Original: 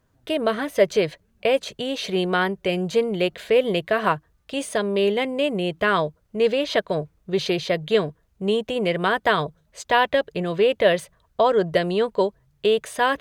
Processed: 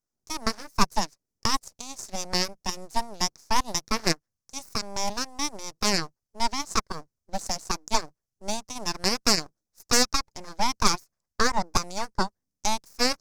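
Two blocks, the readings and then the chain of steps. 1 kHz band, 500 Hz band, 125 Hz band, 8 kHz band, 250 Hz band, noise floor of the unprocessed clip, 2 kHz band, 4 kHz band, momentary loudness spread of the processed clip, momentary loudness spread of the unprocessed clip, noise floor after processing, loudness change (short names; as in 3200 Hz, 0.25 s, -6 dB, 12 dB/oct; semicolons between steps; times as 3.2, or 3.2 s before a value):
-3.0 dB, -15.5 dB, -7.0 dB, +12.5 dB, -7.0 dB, -65 dBFS, -7.0 dB, +1.0 dB, 14 LU, 8 LU, under -85 dBFS, -5.0 dB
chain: added harmonics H 3 -23 dB, 6 -22 dB, 7 -20 dB, 8 -24 dB, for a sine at -5.5 dBFS; full-wave rectifier; resonant high shelf 4200 Hz +9.5 dB, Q 3; gain -1.5 dB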